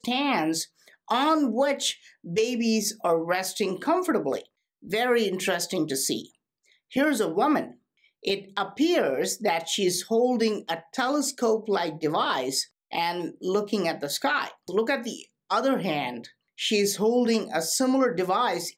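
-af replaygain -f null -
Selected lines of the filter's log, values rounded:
track_gain = +6.2 dB
track_peak = 0.150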